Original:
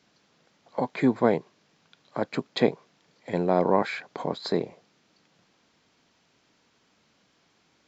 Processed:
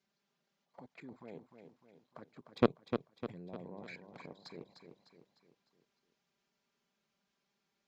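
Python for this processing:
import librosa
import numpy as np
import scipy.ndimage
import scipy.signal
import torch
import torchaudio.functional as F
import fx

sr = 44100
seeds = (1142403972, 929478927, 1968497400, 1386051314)

p1 = fx.peak_eq(x, sr, hz=130.0, db=8.5, octaves=1.9, at=(2.46, 4.23))
p2 = fx.level_steps(p1, sr, step_db=17)
p3 = fx.env_flanger(p2, sr, rest_ms=5.3, full_db=-29.5)
p4 = fx.cheby_harmonics(p3, sr, harmonics=(2, 3, 4), levels_db=(-14, -12, -27), full_scale_db=-8.5)
p5 = p4 + fx.echo_feedback(p4, sr, ms=302, feedback_pct=47, wet_db=-8.0, dry=0)
y = p5 * librosa.db_to_amplitude(-1.5)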